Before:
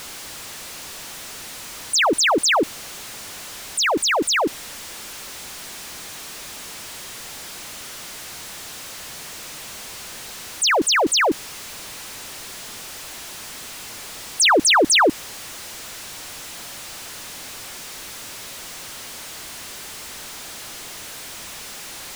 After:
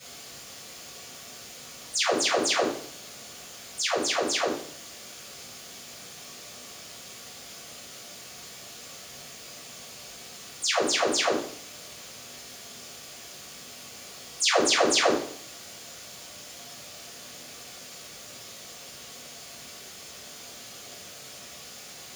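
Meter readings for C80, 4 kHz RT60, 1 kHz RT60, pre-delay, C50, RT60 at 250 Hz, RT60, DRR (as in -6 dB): 9.0 dB, 0.70 s, 0.60 s, 3 ms, 5.0 dB, 0.65 s, 0.60 s, -12.5 dB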